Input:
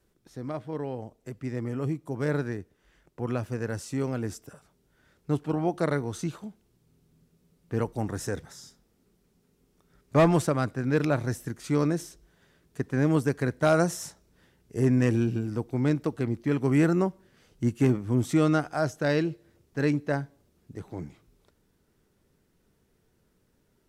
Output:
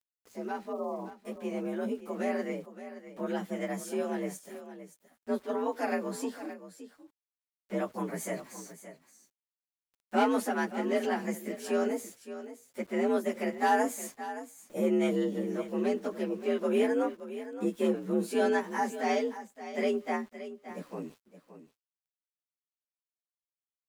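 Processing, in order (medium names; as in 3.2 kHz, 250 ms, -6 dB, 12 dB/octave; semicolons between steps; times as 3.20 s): frequency-domain pitch shifter +3 st; high-pass 83 Hz 12 dB/octave; bass shelf 330 Hz -4 dB; in parallel at +1.5 dB: compression, threshold -36 dBFS, peak gain reduction 16 dB; on the sum: frequency shift +62 Hz; spectral selection erased 0.72–1.15 s, 1.3–11 kHz; small samples zeroed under -51.5 dBFS; on a send: delay 571 ms -13 dB; on the sum: trim -3.5 dB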